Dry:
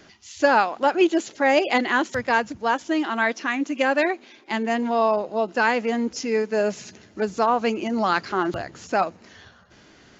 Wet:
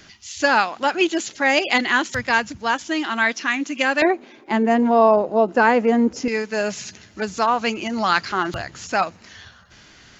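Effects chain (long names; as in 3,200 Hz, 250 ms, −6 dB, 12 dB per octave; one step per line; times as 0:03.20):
parametric band 480 Hz −10.5 dB 2.7 octaves, from 0:04.02 4,500 Hz, from 0:06.28 390 Hz
level +7.5 dB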